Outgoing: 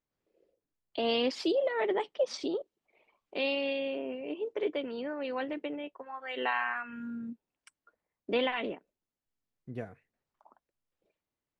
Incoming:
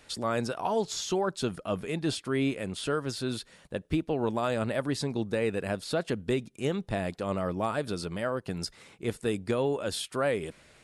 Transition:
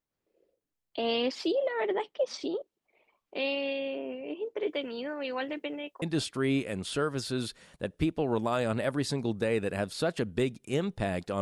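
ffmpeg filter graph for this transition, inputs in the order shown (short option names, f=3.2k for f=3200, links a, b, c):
-filter_complex "[0:a]asettb=1/sr,asplit=3[a][b][c];[a]atrim=end=4.684[d];[b]atrim=start=4.68:end=6.02,asetpts=PTS-STARTPTS,afade=t=in:d=0.004:c=qsin,afade=t=out:st=1.336:d=0.004:c=qsin,highshelf=f=2.5k:g=9[e];[c]atrim=start=6.016[f];[d][e]acrossfade=d=0.004:c1=hsin:c2=qsin[g];[g][f]acrossfade=d=0.004:c1=qsin:c2=hsin,apad=whole_dur=11.41,atrim=end=11.41,atrim=end=6.022[h];[1:a]atrim=start=1.928:end=7.32[i];[h][i]acrossfade=d=0.004:c1=hsin:c2=hsin"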